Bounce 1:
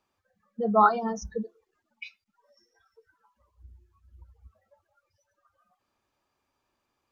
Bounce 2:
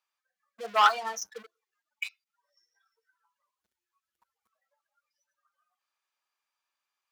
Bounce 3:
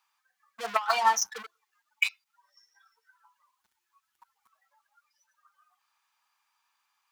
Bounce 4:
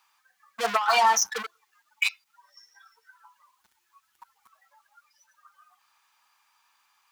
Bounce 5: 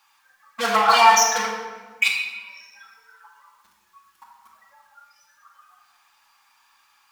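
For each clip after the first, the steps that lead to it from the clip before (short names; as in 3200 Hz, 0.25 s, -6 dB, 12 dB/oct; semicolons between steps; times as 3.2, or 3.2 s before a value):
sample leveller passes 2; HPF 1300 Hz 12 dB/oct
resonant low shelf 700 Hz -6.5 dB, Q 3; negative-ratio compressor -25 dBFS, ratio -0.5; gain +3 dB
limiter -20 dBFS, peak gain reduction 9.5 dB; gain +8.5 dB
shoebox room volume 1200 m³, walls mixed, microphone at 2.3 m; gain +3 dB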